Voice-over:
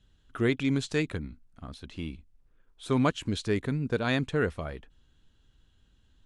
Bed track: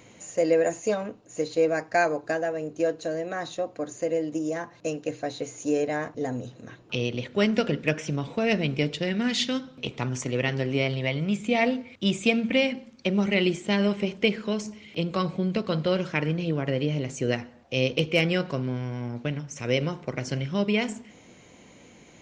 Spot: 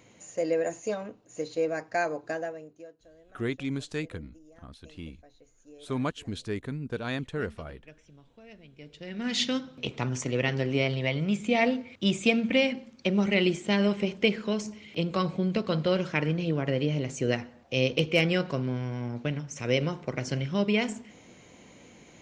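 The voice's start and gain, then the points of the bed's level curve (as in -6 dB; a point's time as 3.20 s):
3.00 s, -5.0 dB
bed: 2.44 s -5.5 dB
2.96 s -26.5 dB
8.71 s -26.5 dB
9.38 s -1 dB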